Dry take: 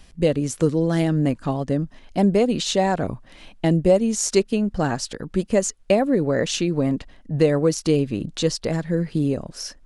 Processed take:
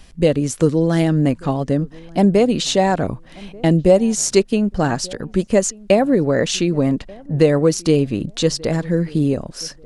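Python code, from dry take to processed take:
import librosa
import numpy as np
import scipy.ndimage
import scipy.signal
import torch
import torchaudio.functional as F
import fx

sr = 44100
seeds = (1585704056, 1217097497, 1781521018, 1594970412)

y = fx.echo_filtered(x, sr, ms=1186, feedback_pct=23, hz=880.0, wet_db=-23)
y = F.gain(torch.from_numpy(y), 4.0).numpy()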